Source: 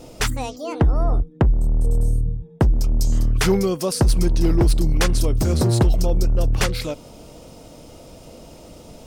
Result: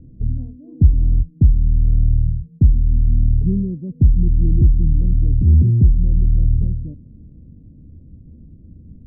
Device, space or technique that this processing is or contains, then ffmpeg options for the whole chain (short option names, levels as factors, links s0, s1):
the neighbour's flat through the wall: -af "lowpass=f=240:w=0.5412,lowpass=f=240:w=1.3066,equalizer=f=80:t=o:w=0.6:g=8,volume=1.33"